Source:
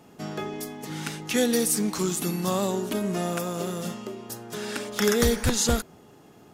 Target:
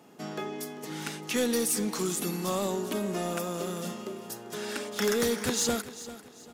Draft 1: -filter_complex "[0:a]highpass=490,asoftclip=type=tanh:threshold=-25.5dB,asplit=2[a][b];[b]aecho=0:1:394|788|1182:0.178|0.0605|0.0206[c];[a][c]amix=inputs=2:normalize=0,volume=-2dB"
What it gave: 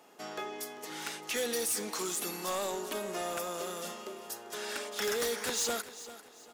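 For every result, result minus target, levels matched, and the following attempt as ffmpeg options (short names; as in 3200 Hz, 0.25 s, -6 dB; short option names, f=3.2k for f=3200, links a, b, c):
250 Hz band -7.5 dB; soft clip: distortion +7 dB
-filter_complex "[0:a]highpass=180,asoftclip=type=tanh:threshold=-25.5dB,asplit=2[a][b];[b]aecho=0:1:394|788|1182:0.178|0.0605|0.0206[c];[a][c]amix=inputs=2:normalize=0,volume=-2dB"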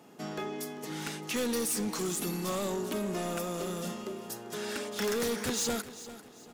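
soft clip: distortion +8 dB
-filter_complex "[0:a]highpass=180,asoftclip=type=tanh:threshold=-17.5dB,asplit=2[a][b];[b]aecho=0:1:394|788|1182:0.178|0.0605|0.0206[c];[a][c]amix=inputs=2:normalize=0,volume=-2dB"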